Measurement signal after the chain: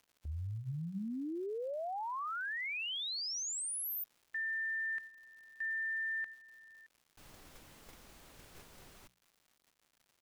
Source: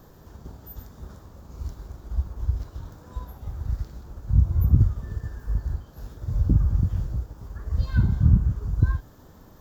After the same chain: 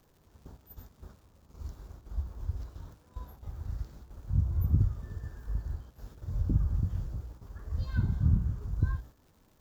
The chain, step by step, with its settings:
noise gate −40 dBFS, range −8 dB
surface crackle 250 per second −49 dBFS
mains-hum notches 60/120/180 Hz
level −7 dB

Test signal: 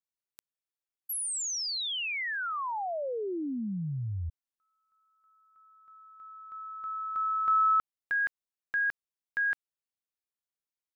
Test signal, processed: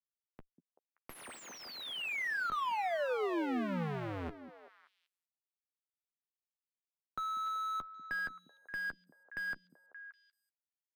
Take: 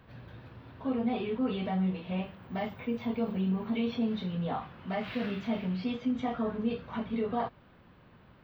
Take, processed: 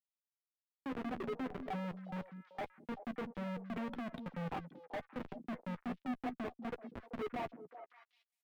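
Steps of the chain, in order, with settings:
spectral dynamics exaggerated over time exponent 3
comparator with hysteresis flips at −39.5 dBFS
three-way crossover with the lows and the highs turned down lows −14 dB, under 160 Hz, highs −22 dB, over 2,900 Hz
double-tracking delay 12 ms −12 dB
on a send: echo through a band-pass that steps 192 ms, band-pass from 230 Hz, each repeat 1.4 octaves, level −7 dB
on the sum: level +2 dB

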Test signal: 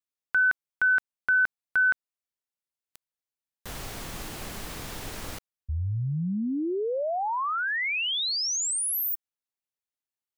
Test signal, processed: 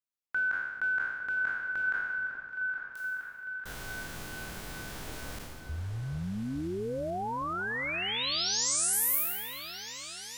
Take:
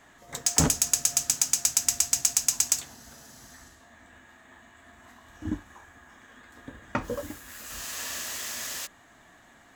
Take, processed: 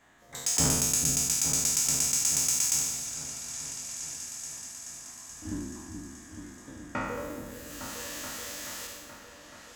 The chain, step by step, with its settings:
peak hold with a decay on every bin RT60 1.28 s
echo whose low-pass opens from repeat to repeat 429 ms, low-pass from 400 Hz, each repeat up 2 octaves, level −6 dB
level −7.5 dB

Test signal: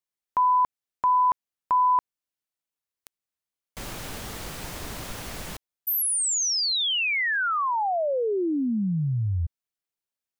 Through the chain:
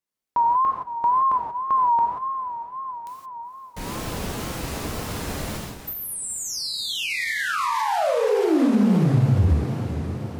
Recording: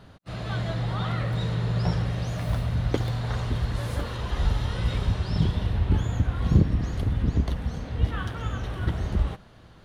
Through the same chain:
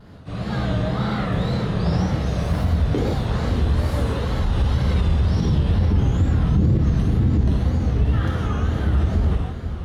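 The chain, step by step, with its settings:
high-shelf EQ 4,800 Hz +7 dB
feedback delay with all-pass diffusion 493 ms, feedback 60%, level −12 dB
reverb whose tail is shaped and stops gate 200 ms flat, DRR −4 dB
brickwall limiter −14.5 dBFS
high-pass filter 110 Hz 6 dB per octave
tape wow and flutter 120 cents
spectral tilt −2.5 dB per octave

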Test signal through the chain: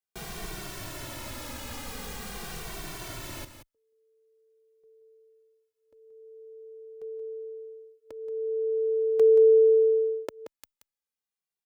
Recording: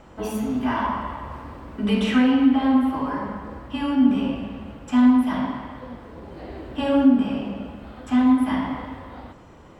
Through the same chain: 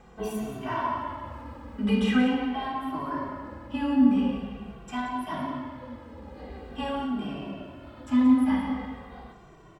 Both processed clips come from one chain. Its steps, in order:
on a send: single-tap delay 178 ms −10.5 dB
on the sum: barber-pole flanger 2.1 ms −0.44 Hz
level −2 dB

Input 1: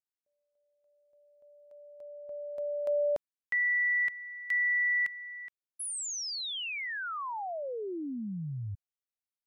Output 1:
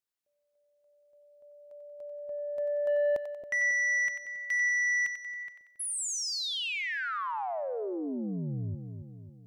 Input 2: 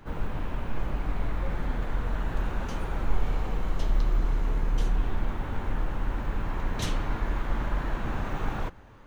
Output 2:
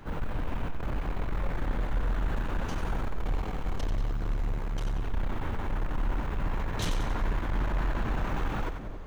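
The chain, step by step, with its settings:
soft clipping −27.5 dBFS
on a send: echo with a time of its own for lows and highs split 600 Hz, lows 273 ms, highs 92 ms, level −8 dB
on the sum: level +2.5 dB

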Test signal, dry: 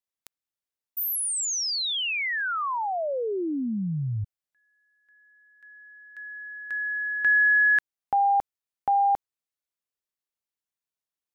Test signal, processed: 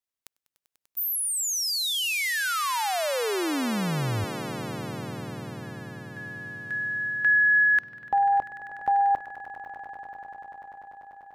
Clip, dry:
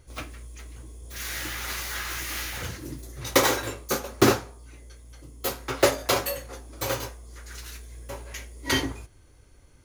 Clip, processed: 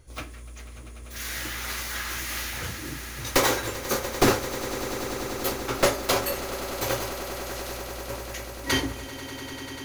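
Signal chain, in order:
wavefolder on the positive side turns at −15 dBFS
echo that builds up and dies away 98 ms, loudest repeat 8, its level −16.5 dB

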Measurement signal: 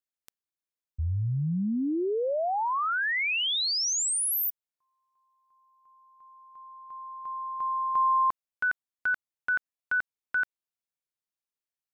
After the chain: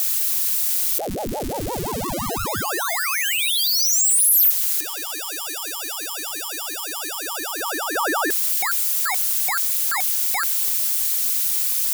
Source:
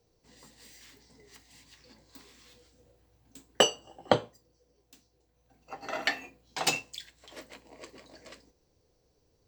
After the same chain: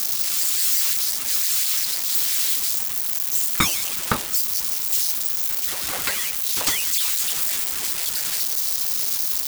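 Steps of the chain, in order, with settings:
spike at every zero crossing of −15.5 dBFS
ring modulator whose carrier an LFO sweeps 420 Hz, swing 80%, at 5.8 Hz
level +4 dB

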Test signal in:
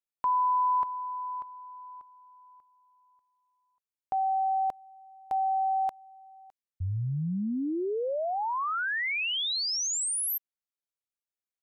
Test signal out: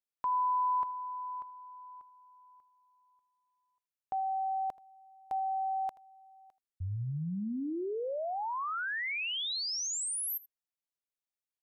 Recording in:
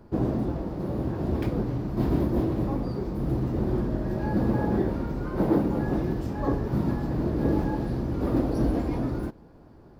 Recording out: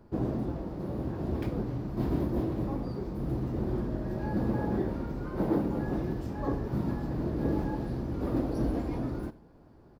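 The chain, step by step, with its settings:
single-tap delay 80 ms −20 dB
level −5 dB

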